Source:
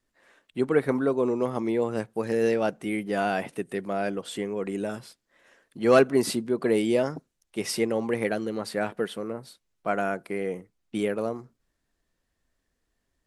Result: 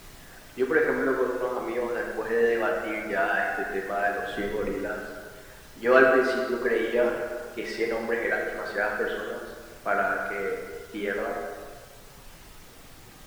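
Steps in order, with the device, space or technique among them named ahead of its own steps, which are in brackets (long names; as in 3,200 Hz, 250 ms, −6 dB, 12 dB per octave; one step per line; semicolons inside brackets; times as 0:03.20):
horn gramophone (band-pass filter 290–3,200 Hz; parametric band 1,600 Hz +10 dB 0.48 octaves; tape wow and flutter; pink noise bed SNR 18 dB)
reverb reduction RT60 1.8 s
0:04.29–0:04.70: low-shelf EQ 350 Hz +10 dB
dense smooth reverb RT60 1.8 s, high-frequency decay 0.8×, DRR −1.5 dB
level −2 dB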